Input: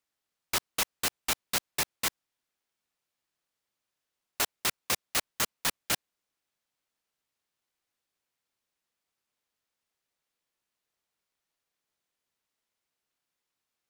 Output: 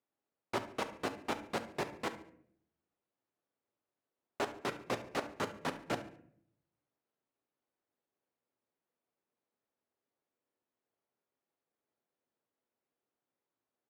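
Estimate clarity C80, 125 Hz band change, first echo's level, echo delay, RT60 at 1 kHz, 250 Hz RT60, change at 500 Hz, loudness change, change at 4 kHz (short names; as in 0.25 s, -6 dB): 16.0 dB, -1.0 dB, -16.0 dB, 71 ms, 0.55 s, 0.85 s, +3.5 dB, -9.0 dB, -14.0 dB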